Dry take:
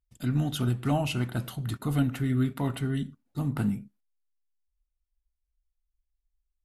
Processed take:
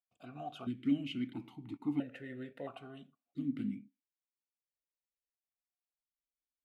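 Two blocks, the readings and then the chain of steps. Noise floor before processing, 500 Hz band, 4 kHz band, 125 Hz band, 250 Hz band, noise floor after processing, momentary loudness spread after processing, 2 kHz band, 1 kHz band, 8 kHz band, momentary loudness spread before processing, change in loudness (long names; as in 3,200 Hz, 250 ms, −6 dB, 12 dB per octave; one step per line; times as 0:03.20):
−82 dBFS, −12.0 dB, −11.5 dB, −21.0 dB, −7.5 dB, below −85 dBFS, 15 LU, −12.5 dB, −12.0 dB, below −25 dB, 6 LU, −10.0 dB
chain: formant filter that steps through the vowels 1.5 Hz
level +2 dB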